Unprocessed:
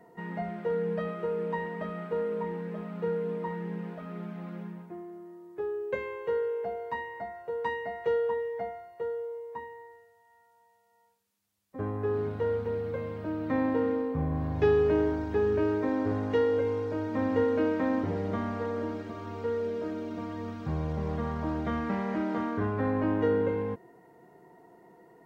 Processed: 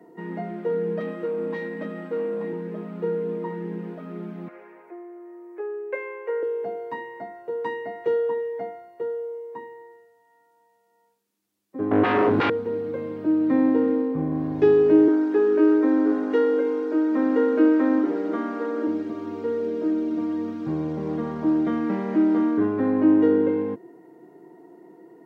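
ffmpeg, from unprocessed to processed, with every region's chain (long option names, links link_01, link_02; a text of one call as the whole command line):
ffmpeg -i in.wav -filter_complex "[0:a]asettb=1/sr,asplit=3[link_01][link_02][link_03];[link_01]atrim=end=1.004[link_04];[link_02]atrim=start=1:end=2.53,asetpts=PTS-STARTPTS,afade=type=in:duration=0.004:curve=qsin,afade=type=out:start_time=1.526:duration=0.004:curve=qsin,aecho=1:1:3.7:0.89,atrim=end_sample=67473,aeval=exprs='(tanh(20*val(0)+0.3)-tanh(0.3))/20':channel_layout=same[link_05];[link_03]atrim=start=2.526[link_06];[link_04][link_05]acrossfade=duration=0.004:curve1=hsin:curve2=qsin[link_07];[link_07][link_06]acrossfade=duration=0.004:curve1=qsin:curve2=hsin,asettb=1/sr,asplit=3[link_08][link_09][link_10];[link_08]atrim=end=4.484[link_11];[link_09]atrim=start=4.48:end=6.43,asetpts=PTS-STARTPTS,afade=type=in:duration=0.004:curve=qsin,afade=type=out:start_time=1.946:duration=0.004:curve=qsin,highpass=frequency=460:width=0.5412,highpass=frequency=460:width=1.3066,highshelf=frequency=2800:width_type=q:width=3:gain=-6.5,acompressor=mode=upward:threshold=-46dB:ratio=2.5:attack=3.2:release=140:knee=2.83:detection=peak[link_12];[link_10]atrim=start=6.426[link_13];[link_11][link_12]acrossfade=duration=0.004:curve1=hsin:curve2=qsin[link_14];[link_14][link_13]acrossfade=duration=0.004:curve1=qsin:curve2=hsin,asettb=1/sr,asplit=3[link_15][link_16][link_17];[link_15]atrim=end=11.914[link_18];[link_16]atrim=start=11.91:end=12.5,asetpts=PTS-STARTPTS,afade=type=in:duration=0.004:curve=qsin,afade=type=out:start_time=0.586:duration=0.004:curve=qsin,highpass=44,highshelf=frequency=2800:gain=-8,aeval=exprs='0.1*sin(PI/2*4.47*val(0)/0.1)':channel_layout=same[link_19];[link_17]atrim=start=12.496[link_20];[link_18][link_19]acrossfade=duration=0.004:curve1=hsin:curve2=qsin[link_21];[link_21][link_20]acrossfade=duration=0.004:curve1=qsin:curve2=hsin,asettb=1/sr,asplit=3[link_22][link_23][link_24];[link_22]atrim=end=15.084[link_25];[link_23]atrim=start=15.08:end=18.87,asetpts=PTS-STARTPTS,afade=type=in:duration=0.004:curve=qsin,afade=type=out:start_time=3.786:duration=0.004:curve=qsin,highpass=frequency=250:width=0.5412,highpass=frequency=250:width=1.3066,equalizer=frequency=1400:width_type=o:width=0.56:gain=7[link_26];[link_24]atrim=start=18.866[link_27];[link_25][link_26]acrossfade=duration=0.004:curve1=hsin:curve2=qsin[link_28];[link_28][link_27]acrossfade=duration=0.004:curve1=qsin:curve2=hsin,highpass=frequency=120:width=0.5412,highpass=frequency=120:width=1.3066,equalizer=frequency=320:width=2:gain=14" out.wav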